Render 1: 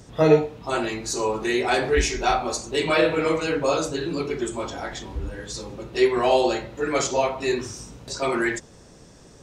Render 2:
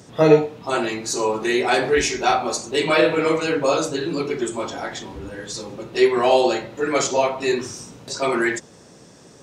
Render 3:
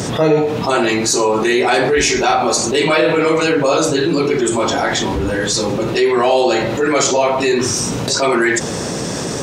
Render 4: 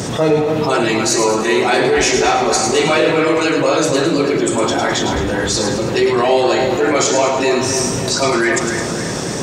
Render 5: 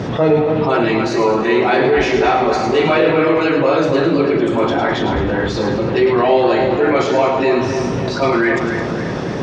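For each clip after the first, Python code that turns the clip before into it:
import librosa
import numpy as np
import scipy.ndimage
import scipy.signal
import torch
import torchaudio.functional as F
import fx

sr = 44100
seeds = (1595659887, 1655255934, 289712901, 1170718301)

y1 = scipy.signal.sosfilt(scipy.signal.butter(2, 130.0, 'highpass', fs=sr, output='sos'), x)
y1 = y1 * librosa.db_to_amplitude(3.0)
y2 = fx.env_flatten(y1, sr, amount_pct=70)
y2 = y2 * librosa.db_to_amplitude(-2.5)
y3 = fx.echo_split(y2, sr, split_hz=2400.0, low_ms=276, high_ms=107, feedback_pct=52, wet_db=-6.5)
y3 = y3 * librosa.db_to_amplitude(-1.0)
y4 = fx.air_absorb(y3, sr, metres=290.0)
y4 = y4 * librosa.db_to_amplitude(1.5)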